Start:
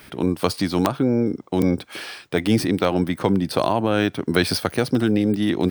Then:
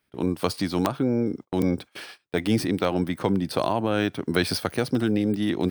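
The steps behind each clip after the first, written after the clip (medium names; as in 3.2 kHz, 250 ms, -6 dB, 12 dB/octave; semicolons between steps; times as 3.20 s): gate -33 dBFS, range -25 dB; trim -4 dB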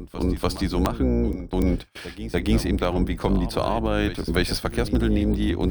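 octave divider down 2 oct, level 0 dB; pre-echo 291 ms -13 dB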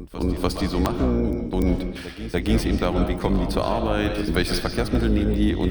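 reverberation RT60 0.60 s, pre-delay 100 ms, DRR 5.5 dB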